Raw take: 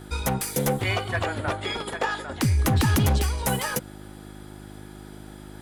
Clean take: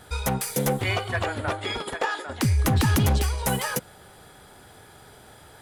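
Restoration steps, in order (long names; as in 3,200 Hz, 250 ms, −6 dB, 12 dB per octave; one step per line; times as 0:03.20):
hum removal 51.3 Hz, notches 7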